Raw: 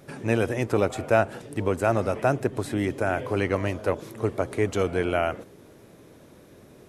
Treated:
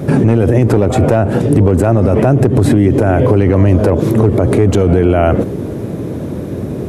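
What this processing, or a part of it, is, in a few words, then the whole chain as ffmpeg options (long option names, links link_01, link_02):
mastering chain: -af "highpass=frequency=57:width=0.5412,highpass=frequency=57:width=1.3066,equalizer=frequency=5300:width_type=o:width=0.77:gain=-1.5,acompressor=threshold=-28dB:ratio=2,tiltshelf=frequency=630:gain=9,asoftclip=type=hard:threshold=-14.5dB,alimiter=level_in=25.5dB:limit=-1dB:release=50:level=0:latency=1,volume=-1dB"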